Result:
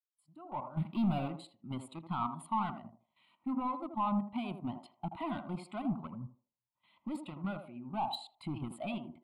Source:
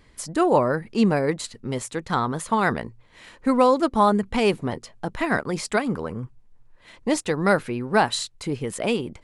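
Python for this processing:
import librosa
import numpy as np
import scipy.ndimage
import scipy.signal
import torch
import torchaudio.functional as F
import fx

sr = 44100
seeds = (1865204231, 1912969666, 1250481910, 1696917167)

p1 = fx.fade_in_head(x, sr, length_s=2.29)
p2 = scipy.signal.sosfilt(scipy.signal.butter(2, 150.0, 'highpass', fs=sr, output='sos'), p1)
p3 = fx.rider(p2, sr, range_db=5, speed_s=0.5)
p4 = fx.leveller(p3, sr, passes=5, at=(0.77, 1.28))
p5 = fx.level_steps(p4, sr, step_db=13)
p6 = 10.0 ** (-28.0 / 20.0) * np.tanh(p5 / 10.0 ** (-28.0 / 20.0))
p7 = fx.fixed_phaser(p6, sr, hz=1700.0, stages=6)
p8 = p7 + fx.echo_banded(p7, sr, ms=80, feedback_pct=46, hz=550.0, wet_db=-3.5, dry=0)
y = fx.spectral_expand(p8, sr, expansion=1.5)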